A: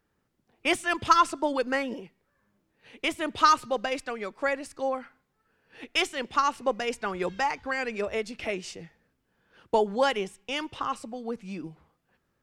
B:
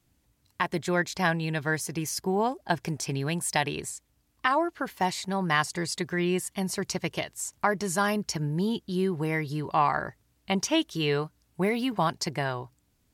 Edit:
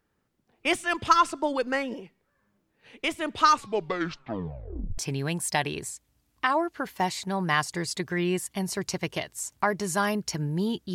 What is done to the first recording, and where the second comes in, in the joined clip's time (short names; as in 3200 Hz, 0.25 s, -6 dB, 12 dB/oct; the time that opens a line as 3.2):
A
3.49 tape stop 1.49 s
4.98 switch to B from 2.99 s